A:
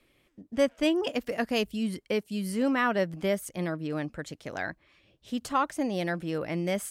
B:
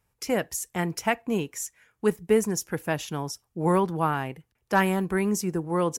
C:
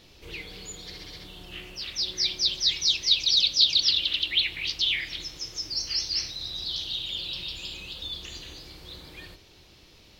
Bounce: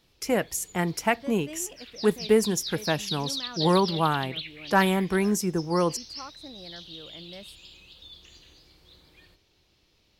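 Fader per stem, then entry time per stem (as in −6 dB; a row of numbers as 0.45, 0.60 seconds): −16.0, +1.0, −12.0 decibels; 0.65, 0.00, 0.00 seconds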